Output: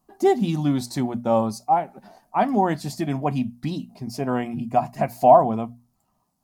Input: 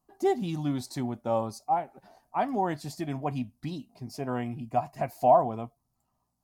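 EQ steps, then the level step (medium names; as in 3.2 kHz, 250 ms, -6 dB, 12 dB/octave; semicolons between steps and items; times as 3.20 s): peaking EQ 210 Hz +7.5 dB 0.34 oct; hum notches 60/120/180/240 Hz; +7.0 dB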